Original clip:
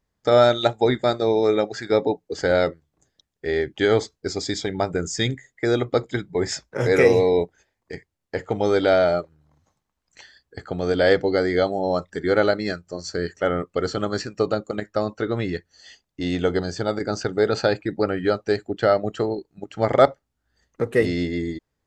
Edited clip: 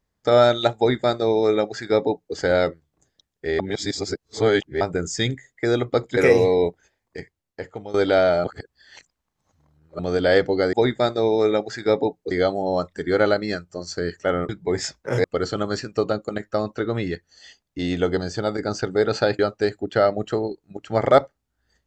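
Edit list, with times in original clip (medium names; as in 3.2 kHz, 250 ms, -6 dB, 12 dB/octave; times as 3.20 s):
0.77–2.35 s: copy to 11.48 s
3.59–4.81 s: reverse
6.17–6.92 s: move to 13.66 s
7.93–8.69 s: fade out, to -16.5 dB
9.19–10.74 s: reverse
17.81–18.26 s: delete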